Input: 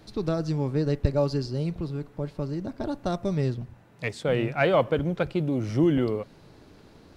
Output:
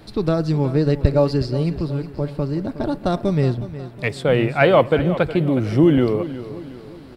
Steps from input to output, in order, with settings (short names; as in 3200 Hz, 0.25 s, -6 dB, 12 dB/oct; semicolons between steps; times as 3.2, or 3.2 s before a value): bell 6300 Hz -8.5 dB 0.38 oct; feedback echo 0.365 s, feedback 45%, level -14 dB; gain +7.5 dB